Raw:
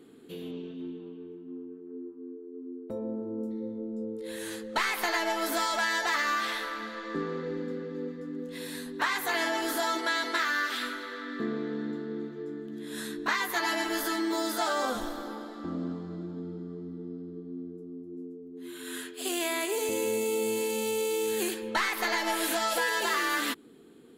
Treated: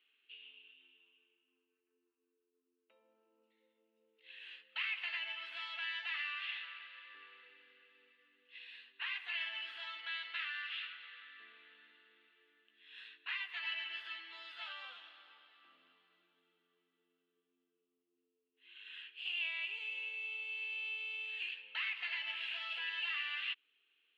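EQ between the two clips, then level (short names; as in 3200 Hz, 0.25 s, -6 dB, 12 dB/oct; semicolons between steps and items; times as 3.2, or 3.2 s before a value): ladder band-pass 2900 Hz, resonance 80%; air absorption 470 m; +7.5 dB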